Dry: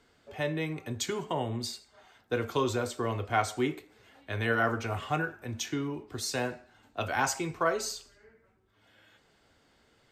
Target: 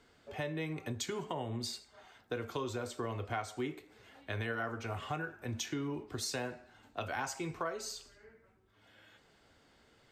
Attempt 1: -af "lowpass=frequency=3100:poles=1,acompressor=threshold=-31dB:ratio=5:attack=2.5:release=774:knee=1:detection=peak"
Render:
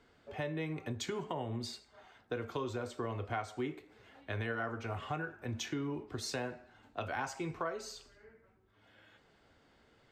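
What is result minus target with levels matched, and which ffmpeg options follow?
8,000 Hz band −4.0 dB
-af "lowpass=frequency=12000:poles=1,acompressor=threshold=-31dB:ratio=5:attack=2.5:release=774:knee=1:detection=peak"

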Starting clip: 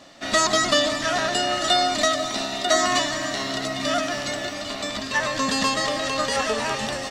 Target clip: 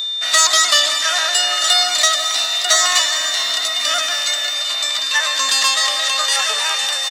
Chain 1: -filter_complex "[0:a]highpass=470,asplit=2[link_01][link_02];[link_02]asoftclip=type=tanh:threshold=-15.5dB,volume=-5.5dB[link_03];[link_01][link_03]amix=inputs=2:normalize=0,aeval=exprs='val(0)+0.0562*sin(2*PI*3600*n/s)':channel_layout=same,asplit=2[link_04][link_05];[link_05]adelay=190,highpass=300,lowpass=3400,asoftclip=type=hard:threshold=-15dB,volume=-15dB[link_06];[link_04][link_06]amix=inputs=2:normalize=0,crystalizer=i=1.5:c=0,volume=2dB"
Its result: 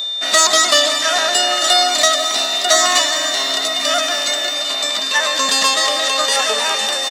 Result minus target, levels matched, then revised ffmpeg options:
500 Hz band +8.5 dB
-filter_complex "[0:a]highpass=1100,asplit=2[link_01][link_02];[link_02]asoftclip=type=tanh:threshold=-15.5dB,volume=-5.5dB[link_03];[link_01][link_03]amix=inputs=2:normalize=0,aeval=exprs='val(0)+0.0562*sin(2*PI*3600*n/s)':channel_layout=same,asplit=2[link_04][link_05];[link_05]adelay=190,highpass=300,lowpass=3400,asoftclip=type=hard:threshold=-15dB,volume=-15dB[link_06];[link_04][link_06]amix=inputs=2:normalize=0,crystalizer=i=1.5:c=0,volume=2dB"

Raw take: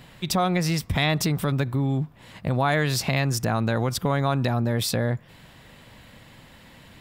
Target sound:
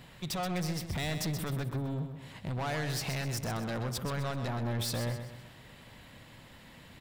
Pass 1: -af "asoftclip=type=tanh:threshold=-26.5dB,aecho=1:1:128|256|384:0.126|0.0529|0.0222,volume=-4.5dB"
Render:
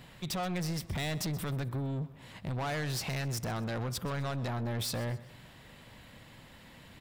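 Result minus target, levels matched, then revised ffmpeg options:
echo-to-direct −9.5 dB
-af "asoftclip=type=tanh:threshold=-26.5dB,aecho=1:1:128|256|384|512|640:0.376|0.158|0.0663|0.0278|0.0117,volume=-4.5dB"

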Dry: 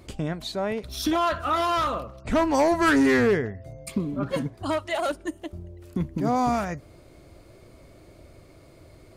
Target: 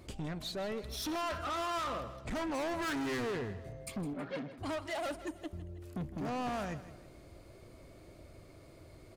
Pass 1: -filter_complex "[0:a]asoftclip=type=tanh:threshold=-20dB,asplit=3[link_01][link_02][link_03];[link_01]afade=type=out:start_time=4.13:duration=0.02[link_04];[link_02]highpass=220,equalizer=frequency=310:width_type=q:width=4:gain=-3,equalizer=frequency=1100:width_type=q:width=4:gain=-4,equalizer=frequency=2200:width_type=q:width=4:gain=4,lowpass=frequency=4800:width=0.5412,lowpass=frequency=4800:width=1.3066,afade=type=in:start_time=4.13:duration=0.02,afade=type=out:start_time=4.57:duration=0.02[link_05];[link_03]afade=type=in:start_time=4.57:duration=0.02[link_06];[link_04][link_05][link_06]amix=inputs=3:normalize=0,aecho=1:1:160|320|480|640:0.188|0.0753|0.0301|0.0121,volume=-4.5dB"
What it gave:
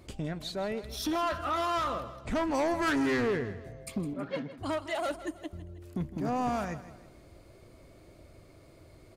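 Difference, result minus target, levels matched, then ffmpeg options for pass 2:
soft clipping: distortion −8 dB
-filter_complex "[0:a]asoftclip=type=tanh:threshold=-29.5dB,asplit=3[link_01][link_02][link_03];[link_01]afade=type=out:start_time=4.13:duration=0.02[link_04];[link_02]highpass=220,equalizer=frequency=310:width_type=q:width=4:gain=-3,equalizer=frequency=1100:width_type=q:width=4:gain=-4,equalizer=frequency=2200:width_type=q:width=4:gain=4,lowpass=frequency=4800:width=0.5412,lowpass=frequency=4800:width=1.3066,afade=type=in:start_time=4.13:duration=0.02,afade=type=out:start_time=4.57:duration=0.02[link_05];[link_03]afade=type=in:start_time=4.57:duration=0.02[link_06];[link_04][link_05][link_06]amix=inputs=3:normalize=0,aecho=1:1:160|320|480|640:0.188|0.0753|0.0301|0.0121,volume=-4.5dB"

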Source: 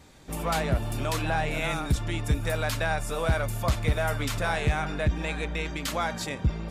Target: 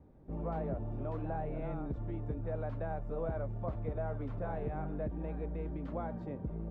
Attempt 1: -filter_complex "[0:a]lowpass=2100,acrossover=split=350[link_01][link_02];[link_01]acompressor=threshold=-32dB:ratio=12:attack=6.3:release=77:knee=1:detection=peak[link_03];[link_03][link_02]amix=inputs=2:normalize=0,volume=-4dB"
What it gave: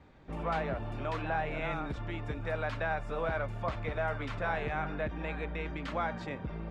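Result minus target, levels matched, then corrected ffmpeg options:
2,000 Hz band +14.0 dB
-filter_complex "[0:a]lowpass=550,acrossover=split=350[link_01][link_02];[link_01]acompressor=threshold=-32dB:ratio=12:attack=6.3:release=77:knee=1:detection=peak[link_03];[link_03][link_02]amix=inputs=2:normalize=0,volume=-4dB"

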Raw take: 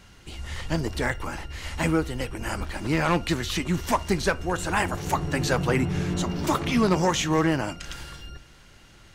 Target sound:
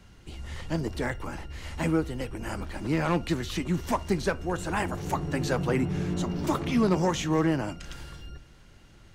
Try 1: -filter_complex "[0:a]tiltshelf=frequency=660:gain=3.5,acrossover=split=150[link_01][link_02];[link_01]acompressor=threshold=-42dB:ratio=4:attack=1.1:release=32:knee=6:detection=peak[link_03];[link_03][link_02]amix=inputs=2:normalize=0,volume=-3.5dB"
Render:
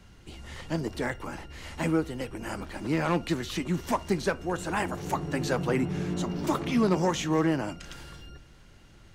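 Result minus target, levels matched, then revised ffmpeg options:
downward compressor: peak gain reduction +8 dB
-filter_complex "[0:a]tiltshelf=frequency=660:gain=3.5,acrossover=split=150[link_01][link_02];[link_01]acompressor=threshold=-31.5dB:ratio=4:attack=1.1:release=32:knee=6:detection=peak[link_03];[link_03][link_02]amix=inputs=2:normalize=0,volume=-3.5dB"

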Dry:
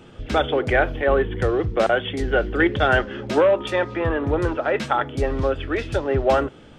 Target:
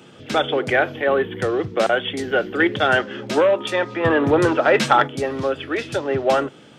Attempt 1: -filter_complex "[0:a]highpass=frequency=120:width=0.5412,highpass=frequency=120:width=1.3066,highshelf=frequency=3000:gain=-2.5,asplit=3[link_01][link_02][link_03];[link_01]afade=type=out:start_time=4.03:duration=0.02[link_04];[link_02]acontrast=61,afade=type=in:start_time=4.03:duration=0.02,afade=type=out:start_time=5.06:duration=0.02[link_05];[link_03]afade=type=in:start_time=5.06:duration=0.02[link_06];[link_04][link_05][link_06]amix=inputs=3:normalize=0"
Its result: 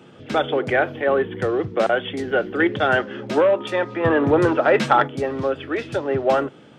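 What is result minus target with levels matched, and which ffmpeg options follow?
8,000 Hz band −7.0 dB
-filter_complex "[0:a]highpass=frequency=120:width=0.5412,highpass=frequency=120:width=1.3066,highshelf=frequency=3000:gain=7,asplit=3[link_01][link_02][link_03];[link_01]afade=type=out:start_time=4.03:duration=0.02[link_04];[link_02]acontrast=61,afade=type=in:start_time=4.03:duration=0.02,afade=type=out:start_time=5.06:duration=0.02[link_05];[link_03]afade=type=in:start_time=5.06:duration=0.02[link_06];[link_04][link_05][link_06]amix=inputs=3:normalize=0"

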